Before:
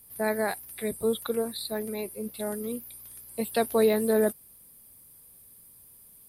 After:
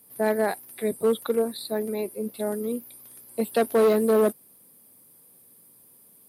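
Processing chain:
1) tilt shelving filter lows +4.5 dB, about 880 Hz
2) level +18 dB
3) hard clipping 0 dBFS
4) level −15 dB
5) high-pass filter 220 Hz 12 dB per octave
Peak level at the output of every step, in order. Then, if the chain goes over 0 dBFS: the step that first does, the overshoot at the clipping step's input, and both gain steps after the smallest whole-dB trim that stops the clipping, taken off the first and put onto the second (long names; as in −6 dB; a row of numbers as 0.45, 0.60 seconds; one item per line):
−10.0, +8.0, 0.0, −15.0, −10.0 dBFS
step 2, 8.0 dB
step 2 +10 dB, step 4 −7 dB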